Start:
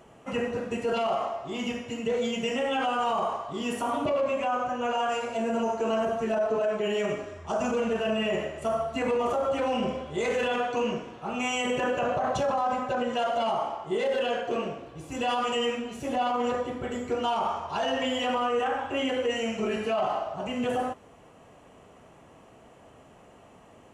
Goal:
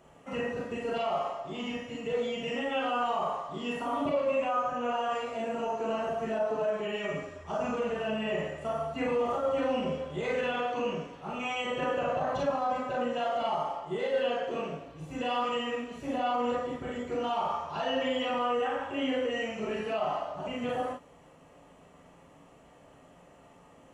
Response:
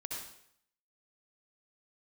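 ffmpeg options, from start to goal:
-filter_complex "[0:a]acrossover=split=4600[a][b];[b]acompressor=threshold=-59dB:ratio=4:attack=1:release=60[c];[a][c]amix=inputs=2:normalize=0[d];[1:a]atrim=start_sample=2205,afade=t=out:st=0.16:d=0.01,atrim=end_sample=7497,asetrate=83790,aresample=44100[e];[d][e]afir=irnorm=-1:irlink=0,volume=4dB"

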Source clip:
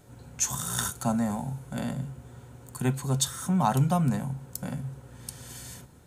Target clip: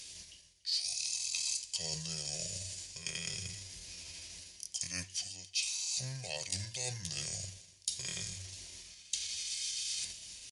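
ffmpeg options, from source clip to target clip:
-af "asetrate=53981,aresample=44100,atempo=0.816958,equalizer=f=520:t=o:w=2.9:g=-4,aexciter=amount=12.4:drive=5.5:freq=3.2k,equalizer=f=160:t=o:w=0.67:g=-5,equalizer=f=1k:t=o:w=0.67:g=3,equalizer=f=6.3k:t=o:w=0.67:g=4,asetrate=25442,aresample=44100,areverse,acompressor=threshold=-28dB:ratio=5,areverse,aecho=1:1:287:0.075,volume=-8.5dB"

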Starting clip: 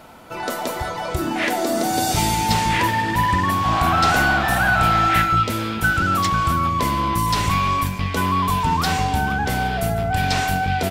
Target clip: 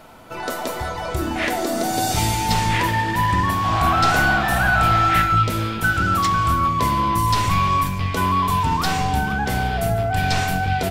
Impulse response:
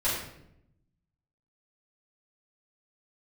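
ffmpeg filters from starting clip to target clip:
-filter_complex "[0:a]asplit=2[a][b];[1:a]atrim=start_sample=2205,asetrate=48510,aresample=44100,lowshelf=f=160:g=9[c];[b][c]afir=irnorm=-1:irlink=0,volume=-21dB[d];[a][d]amix=inputs=2:normalize=0,volume=-1.5dB"

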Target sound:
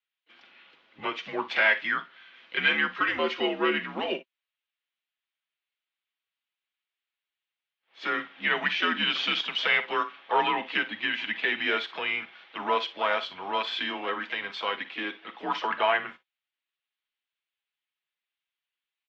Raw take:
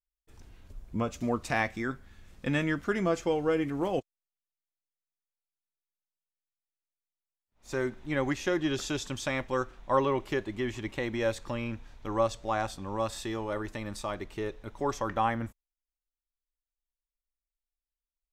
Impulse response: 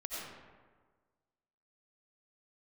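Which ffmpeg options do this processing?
-filter_complex "[0:a]aecho=1:1:6.3:0.41,acrossover=split=1200[a][b];[b]acontrast=79[c];[a][c]amix=inputs=2:normalize=0,asoftclip=type=tanh:threshold=-11dB,crystalizer=i=8:c=0,asoftclip=type=hard:threshold=-10dB,asplit=2[d][e];[e]asetrate=55563,aresample=44100,atempo=0.793701,volume=-11dB[f];[d][f]amix=inputs=2:normalize=0,aecho=1:1:42|56:0.158|0.15,asetrate=42336,aresample=44100,highpass=f=370:t=q:w=0.5412,highpass=f=370:t=q:w=1.307,lowpass=f=3.4k:t=q:w=0.5176,lowpass=f=3.4k:t=q:w=0.7071,lowpass=f=3.4k:t=q:w=1.932,afreqshift=-92,volume=-3.5dB"

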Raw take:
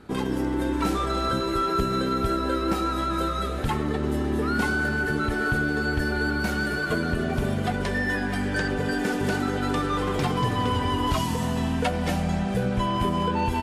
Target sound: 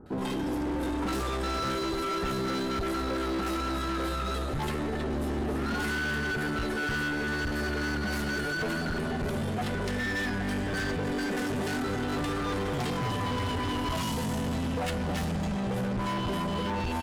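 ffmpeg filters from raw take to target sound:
-filter_complex "[0:a]acrossover=split=1100[a][b];[b]adelay=60[c];[a][c]amix=inputs=2:normalize=0,atempo=0.8,bandreject=f=2.3k:w=21,asoftclip=type=hard:threshold=-28dB"

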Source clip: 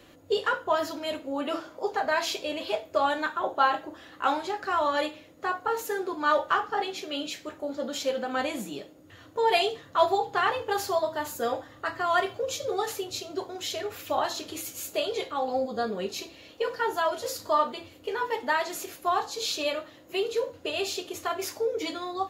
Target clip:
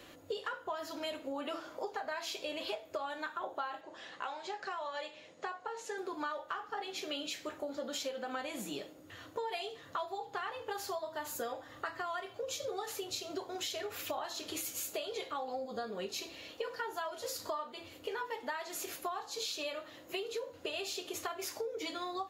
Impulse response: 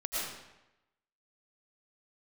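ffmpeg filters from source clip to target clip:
-filter_complex "[0:a]lowshelf=f=390:g=-6,acompressor=threshold=-37dB:ratio=12,asettb=1/sr,asplit=3[a][b][c];[a]atrim=end=3.814[d];[b]atrim=start=3.81:end=5.98,asetpts=PTS-STARTPTS,afade=t=in:d=0.004:c=qsin,afade=t=out:st=2.166:d=0.004:c=qsin,highpass=f=110:w=0.5412,highpass=f=110:w=1.3066,equalizer=f=130:t=q:w=4:g=-5,equalizer=f=290:t=q:w=4:g=-10,equalizer=f=1.3k:t=q:w=4:g=-5,lowpass=f=8k:w=0.5412,lowpass=f=8k:w=1.3066[e];[c]atrim=start=5.976[f];[d][e]acrossfade=d=0.004:c1=hsin:c2=qsin[g];[g][f]acrossfade=d=0.004:c1=qsin:c2=hsin,volume=1.5dB"

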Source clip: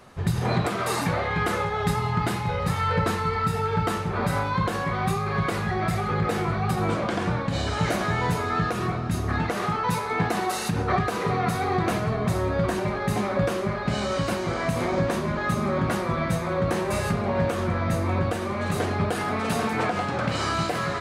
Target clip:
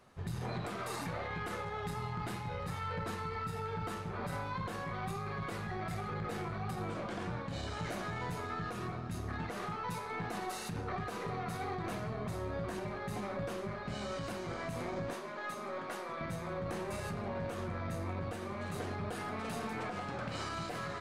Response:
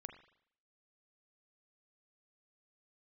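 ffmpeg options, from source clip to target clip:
-filter_complex "[0:a]asettb=1/sr,asplit=3[a][b][c];[a]atrim=end=15.134[d];[b]atrim=start=15.13:end=16.21,asetpts=PTS-STARTPTS,afade=t=in:d=0.004:c=qsin,afade=t=out:st=1.076:d=0.004:c=qsin,highpass=390[e];[c]atrim=start=16.206[f];[d][e]acrossfade=d=0.004:c1=hsin:c2=qsin[g];[g][f]acrossfade=d=0.004:c1=qsin:c2=hsin,alimiter=limit=-18dB:level=0:latency=1:release=23,aeval=exprs='0.668*(cos(1*acos(clip(val(0)/0.668,-1,1)))-cos(1*PI/2))+0.211*(cos(2*acos(clip(val(0)/0.668,-1,1)))-cos(2*PI/2))+0.106*(cos(3*acos(clip(val(0)/0.668,-1,1)))-cos(3*PI/2))':c=same,volume=-7dB"

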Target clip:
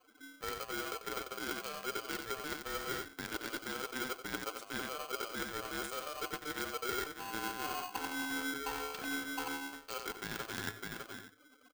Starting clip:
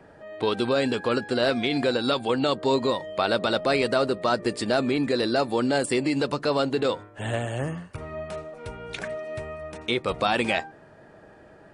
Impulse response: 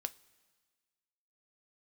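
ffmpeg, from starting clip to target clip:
-af "aeval=exprs='0.398*(cos(1*acos(clip(val(0)/0.398,-1,1)))-cos(1*PI/2))+0.00708*(cos(2*acos(clip(val(0)/0.398,-1,1)))-cos(2*PI/2))+0.1*(cos(3*acos(clip(val(0)/0.398,-1,1)))-cos(3*PI/2))+0.00355*(cos(6*acos(clip(val(0)/0.398,-1,1)))-cos(6*PI/2))+0.00282*(cos(8*acos(clip(val(0)/0.398,-1,1)))-cos(8*PI/2))':c=same,aecho=1:1:605:0.0891,dynaudnorm=f=270:g=21:m=4.5dB,afftdn=nr=25:nf=-51,aemphasis=mode=reproduction:type=cd,bandreject=f=2.9k:w=19,aecho=1:1:92:0.422,areverse,acompressor=threshold=-44dB:ratio=16,areverse,equalizer=f=125:t=o:w=1:g=4,equalizer=f=250:t=o:w=1:g=-9,equalizer=f=500:t=o:w=1:g=5,equalizer=f=2k:t=o:w=1:g=-10,equalizer=f=8k:t=o:w=1:g=11,aeval=exprs='val(0)*sgn(sin(2*PI*900*n/s))':c=same,volume=8dB"

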